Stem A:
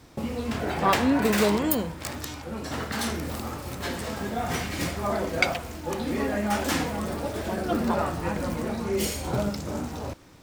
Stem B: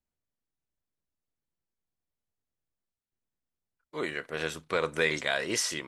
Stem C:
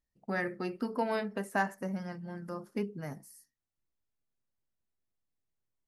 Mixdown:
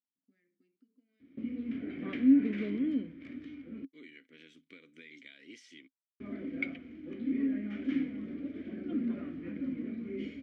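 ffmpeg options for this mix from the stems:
ffmpeg -i stem1.wav -i stem2.wav -i stem3.wav -filter_complex "[0:a]lowpass=1600,adelay=1200,volume=2.5dB,asplit=3[link_01][link_02][link_03];[link_01]atrim=end=3.85,asetpts=PTS-STARTPTS,afade=type=out:start_time=3.846:duration=0.004:curve=hsin[link_04];[link_02]atrim=start=3.85:end=6.2,asetpts=PTS-STARTPTS,volume=0[link_05];[link_03]atrim=start=6.2,asetpts=PTS-STARTPTS,afade=type=in:duration=0.004:curve=hsin[link_06];[link_04][link_05][link_06]concat=n=3:v=0:a=1[link_07];[1:a]acompressor=threshold=-32dB:ratio=6,volume=-3.5dB[link_08];[2:a]acompressor=threshold=-40dB:ratio=16,volume=-17dB[link_09];[link_07][link_08][link_09]amix=inputs=3:normalize=0,asplit=3[link_10][link_11][link_12];[link_10]bandpass=frequency=270:width_type=q:width=8,volume=0dB[link_13];[link_11]bandpass=frequency=2290:width_type=q:width=8,volume=-6dB[link_14];[link_12]bandpass=frequency=3010:width_type=q:width=8,volume=-9dB[link_15];[link_13][link_14][link_15]amix=inputs=3:normalize=0,equalizer=frequency=6500:width=1.5:gain=4.5" out.wav

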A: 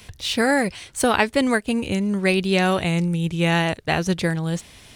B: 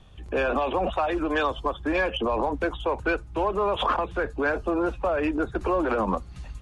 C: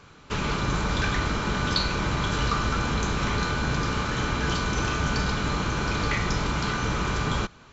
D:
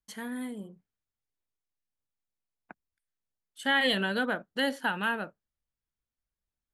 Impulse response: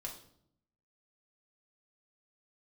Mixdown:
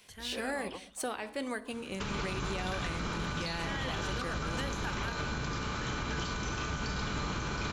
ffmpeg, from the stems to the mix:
-filter_complex "[0:a]volume=-14.5dB,asplit=2[link_01][link_02];[link_02]volume=-7.5dB[link_03];[1:a]alimiter=limit=-21dB:level=0:latency=1:release=197,volume=-14dB[link_04];[2:a]highshelf=frequency=2700:gain=-9.5,adelay=1700,volume=-3dB[link_05];[3:a]volume=-7.5dB,asplit=2[link_06][link_07];[link_07]apad=whole_len=291863[link_08];[link_04][link_08]sidechaingate=range=-15dB:threshold=-58dB:ratio=16:detection=peak[link_09];[link_01][link_06]amix=inputs=2:normalize=0,highpass=230,alimiter=limit=-24dB:level=0:latency=1:release=264,volume=0dB[link_10];[link_09][link_05]amix=inputs=2:normalize=0,highshelf=frequency=2700:gain=12,alimiter=limit=-22dB:level=0:latency=1:release=464,volume=0dB[link_11];[4:a]atrim=start_sample=2205[link_12];[link_03][link_12]afir=irnorm=-1:irlink=0[link_13];[link_10][link_11][link_13]amix=inputs=3:normalize=0,alimiter=level_in=1.5dB:limit=-24dB:level=0:latency=1:release=86,volume=-1.5dB"

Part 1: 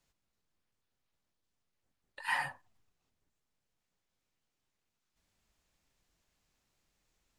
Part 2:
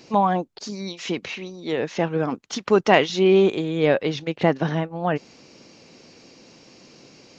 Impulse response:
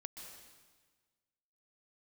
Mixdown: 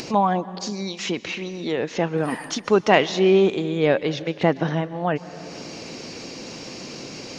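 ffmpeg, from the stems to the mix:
-filter_complex "[0:a]volume=-4.5dB,asplit=2[link_01][link_02];[link_02]volume=-6.5dB[link_03];[1:a]volume=-2dB,asplit=2[link_04][link_05];[link_05]volume=-6.5dB[link_06];[2:a]atrim=start_sample=2205[link_07];[link_03][link_06]amix=inputs=2:normalize=0[link_08];[link_08][link_07]afir=irnorm=-1:irlink=0[link_09];[link_01][link_04][link_09]amix=inputs=3:normalize=0,equalizer=frequency=9300:width=5.1:gain=13,acompressor=mode=upward:threshold=-23dB:ratio=2.5"

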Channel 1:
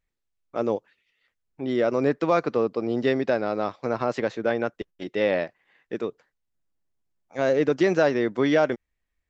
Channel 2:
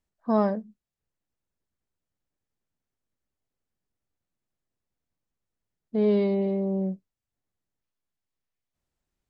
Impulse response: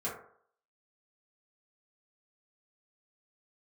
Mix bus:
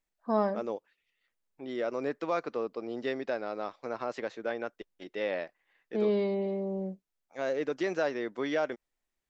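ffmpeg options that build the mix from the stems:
-filter_complex "[0:a]volume=-8dB[link_01];[1:a]volume=-2dB[link_02];[link_01][link_02]amix=inputs=2:normalize=0,equalizer=frequency=85:width_type=o:width=2.4:gain=-13"

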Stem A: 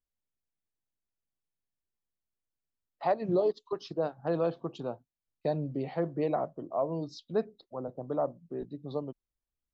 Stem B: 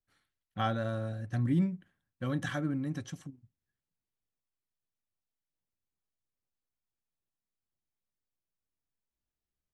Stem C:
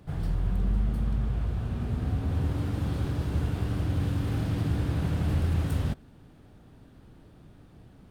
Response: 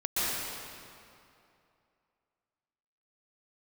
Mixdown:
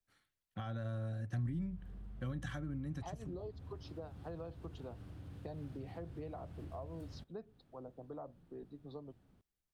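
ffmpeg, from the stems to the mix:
-filter_complex "[0:a]bandreject=frequency=580:width=12,volume=-10.5dB[link_01];[1:a]alimiter=level_in=1.5dB:limit=-24dB:level=0:latency=1,volume=-1.5dB,volume=-1dB[link_02];[2:a]acompressor=threshold=-37dB:ratio=2,adelay=1300,volume=-15.5dB[link_03];[link_01][link_02][link_03]amix=inputs=3:normalize=0,acrossover=split=140[link_04][link_05];[link_05]acompressor=threshold=-44dB:ratio=6[link_06];[link_04][link_06]amix=inputs=2:normalize=0"

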